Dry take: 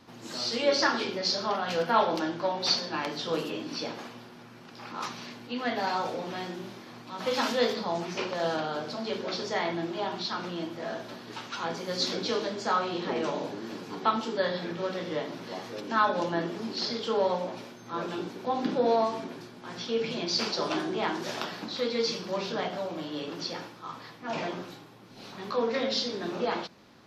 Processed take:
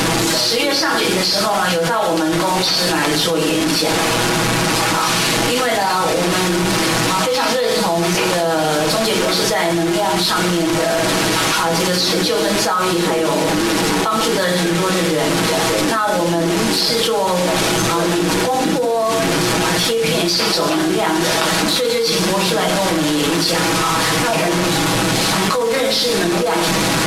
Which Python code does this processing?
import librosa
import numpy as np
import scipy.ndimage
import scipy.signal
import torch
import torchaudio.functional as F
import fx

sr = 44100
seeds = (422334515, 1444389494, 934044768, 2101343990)

y = fx.delta_mod(x, sr, bps=64000, step_db=-31.0)
y = y + 0.65 * np.pad(y, (int(6.2 * sr / 1000.0), 0))[:len(y)]
y = fx.env_flatten(y, sr, amount_pct=100)
y = F.gain(torch.from_numpy(y), 1.5).numpy()